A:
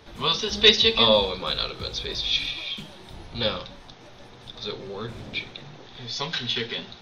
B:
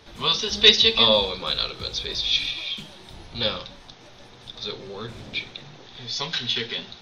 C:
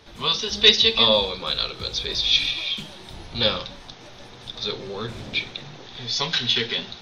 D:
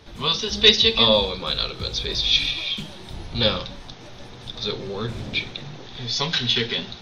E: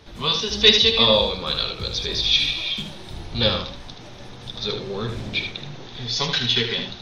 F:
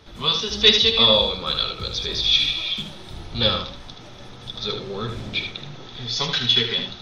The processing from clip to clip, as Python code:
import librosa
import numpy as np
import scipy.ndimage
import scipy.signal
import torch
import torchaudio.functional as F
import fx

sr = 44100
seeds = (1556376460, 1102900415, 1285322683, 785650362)

y1 = fx.peak_eq(x, sr, hz=5500.0, db=4.5, octaves=2.4)
y1 = y1 * 10.0 ** (-1.5 / 20.0)
y2 = fx.rider(y1, sr, range_db=4, speed_s=2.0)
y3 = fx.low_shelf(y2, sr, hz=300.0, db=6.0)
y4 = y3 + 10.0 ** (-7.0 / 20.0) * np.pad(y3, (int(77 * sr / 1000.0), 0))[:len(y3)]
y5 = fx.small_body(y4, sr, hz=(1300.0, 3400.0), ring_ms=45, db=9)
y5 = y5 * 10.0 ** (-1.5 / 20.0)